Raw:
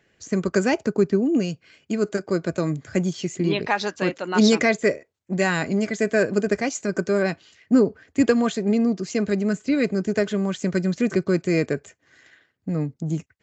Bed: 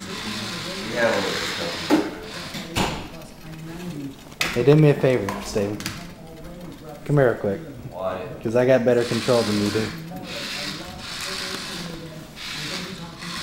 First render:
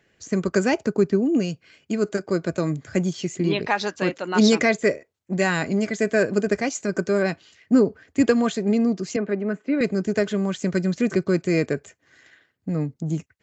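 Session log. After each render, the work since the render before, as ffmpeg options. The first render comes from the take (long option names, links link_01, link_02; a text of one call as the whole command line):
ffmpeg -i in.wav -filter_complex "[0:a]asettb=1/sr,asplit=3[link_01][link_02][link_03];[link_01]atrim=end=9.164[link_04];[link_02]atrim=start=9.16:end=9.81,asetpts=PTS-STARTPTS,afade=type=in:duration=0.004:curve=qsin,afade=type=out:start_time=0.646:duration=0.004:curve=qsin,acrossover=split=190 2600:gain=0.0631 1 0.0631[link_05][link_06][link_07];[link_05][link_06][link_07]amix=inputs=3:normalize=0[link_08];[link_03]atrim=start=9.806[link_09];[link_04][link_08]acrossfade=duration=0.004:curve1=hsin:curve2=qsin[link_10];[link_10][link_09]acrossfade=duration=0.004:curve1=qsin:curve2=hsin" out.wav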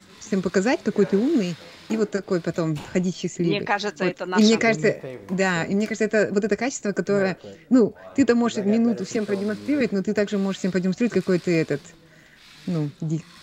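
ffmpeg -i in.wav -i bed.wav -filter_complex "[1:a]volume=-16.5dB[link_01];[0:a][link_01]amix=inputs=2:normalize=0" out.wav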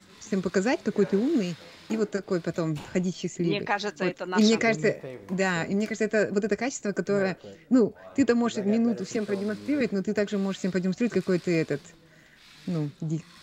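ffmpeg -i in.wav -af "volume=-4dB" out.wav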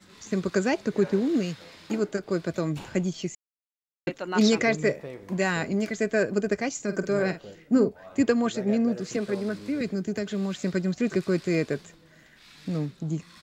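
ffmpeg -i in.wav -filter_complex "[0:a]asplit=3[link_01][link_02][link_03];[link_01]afade=type=out:start_time=6.76:duration=0.02[link_04];[link_02]asplit=2[link_05][link_06];[link_06]adelay=48,volume=-11dB[link_07];[link_05][link_07]amix=inputs=2:normalize=0,afade=type=in:start_time=6.76:duration=0.02,afade=type=out:start_time=7.88:duration=0.02[link_08];[link_03]afade=type=in:start_time=7.88:duration=0.02[link_09];[link_04][link_08][link_09]amix=inputs=3:normalize=0,asettb=1/sr,asplit=3[link_10][link_11][link_12];[link_10]atrim=end=9.594[link_13];[link_11]atrim=start=9.59:end=10.63,asetpts=PTS-STARTPTS,afade=type=in:duration=0.004:curve=qsin,afade=type=out:start_time=1.036:duration=0.004:curve=qsin,acrossover=split=270|3000[link_14][link_15][link_16];[link_15]acompressor=threshold=-33dB:ratio=2.5:attack=3.2:release=140:knee=2.83:detection=peak[link_17];[link_14][link_17][link_16]amix=inputs=3:normalize=0[link_18];[link_12]atrim=start=10.626[link_19];[link_13][link_18]acrossfade=duration=0.004:curve1=hsin:curve2=qsin[link_20];[link_20][link_19]acrossfade=duration=0.004:curve1=qsin:curve2=hsin,asplit=3[link_21][link_22][link_23];[link_21]atrim=end=3.35,asetpts=PTS-STARTPTS,afade=type=out:start_time=3.346:duration=0.004:curve=hsin[link_24];[link_22]atrim=start=3.35:end=4.07,asetpts=PTS-STARTPTS,volume=0[link_25];[link_23]atrim=start=4.07,asetpts=PTS-STARTPTS,afade=type=in:duration=0.004:curve=hsin[link_26];[link_24][link_25][link_26]concat=n=3:v=0:a=1" out.wav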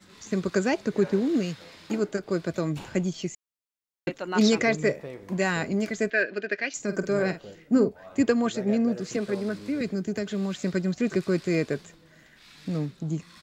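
ffmpeg -i in.wav -filter_complex "[0:a]asettb=1/sr,asplit=3[link_01][link_02][link_03];[link_01]atrim=end=6.104[link_04];[link_02]atrim=start=6.1:end=6.74,asetpts=PTS-STARTPTS,afade=type=in:duration=0.004:curve=qsin,afade=type=out:start_time=0.636:duration=0.004:curve=qsin,highpass=430,equalizer=frequency=490:width_type=q:width=4:gain=-4,equalizer=frequency=790:width_type=q:width=4:gain=-8,equalizer=frequency=1100:width_type=q:width=4:gain=-9,equalizer=frequency=1700:width_type=q:width=4:gain=9,equalizer=frequency=2600:width_type=q:width=4:gain=7,equalizer=frequency=4000:width_type=q:width=4:gain=4,lowpass=frequency=4500:width=0.5412,lowpass=frequency=4500:width=1.3066[link_05];[link_03]atrim=start=6.736[link_06];[link_04][link_05]acrossfade=duration=0.004:curve1=hsin:curve2=qsin[link_07];[link_07][link_06]acrossfade=duration=0.004:curve1=qsin:curve2=hsin" out.wav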